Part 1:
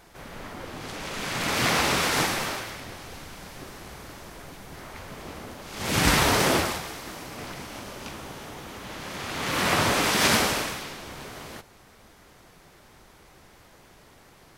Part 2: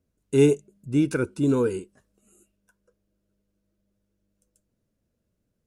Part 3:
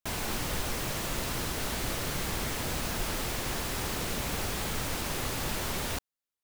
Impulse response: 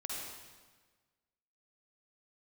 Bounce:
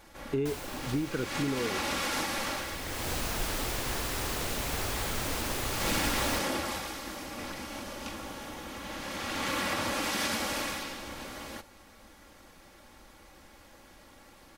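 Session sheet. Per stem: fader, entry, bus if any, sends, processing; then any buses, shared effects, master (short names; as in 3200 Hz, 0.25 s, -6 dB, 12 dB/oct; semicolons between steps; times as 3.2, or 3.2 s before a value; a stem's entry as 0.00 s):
-2.5 dB, 0.00 s, bus A, no send, comb 3.6 ms, depth 57%
-0.5 dB, 0.00 s, bus A, no send, LPF 2900 Hz
0.0 dB, 0.40 s, no bus, no send, bell 180 Hz -5.5 dB; auto duck -18 dB, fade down 1.40 s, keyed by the second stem
bus A: 0.0 dB, compressor 8:1, threshold -28 dBFS, peak gain reduction 14.5 dB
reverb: off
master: dry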